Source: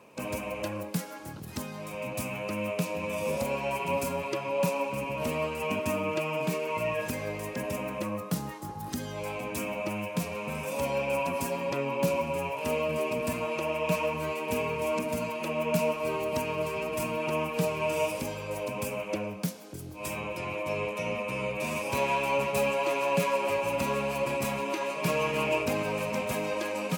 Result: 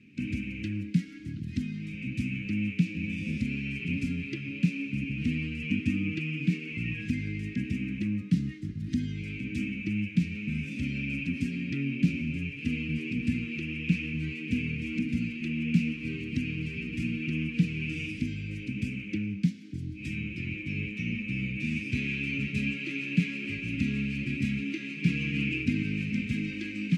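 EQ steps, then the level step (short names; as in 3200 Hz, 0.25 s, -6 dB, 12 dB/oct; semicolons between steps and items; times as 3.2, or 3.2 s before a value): elliptic band-stop 280–2100 Hz, stop band 70 dB; tape spacing loss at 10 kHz 30 dB; +8.0 dB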